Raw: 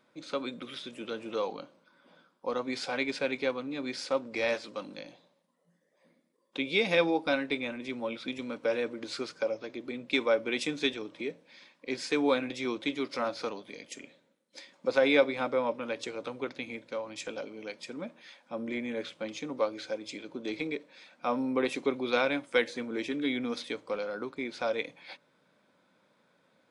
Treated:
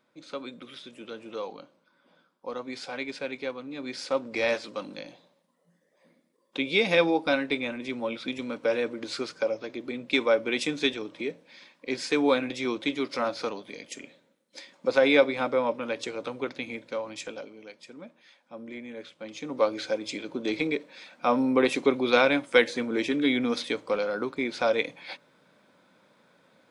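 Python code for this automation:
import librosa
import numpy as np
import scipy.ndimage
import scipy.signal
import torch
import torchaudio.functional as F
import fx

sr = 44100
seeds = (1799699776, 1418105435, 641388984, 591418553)

y = fx.gain(x, sr, db=fx.line((3.59, -3.0), (4.28, 3.5), (17.09, 3.5), (17.68, -5.5), (19.15, -5.5), (19.68, 6.5)))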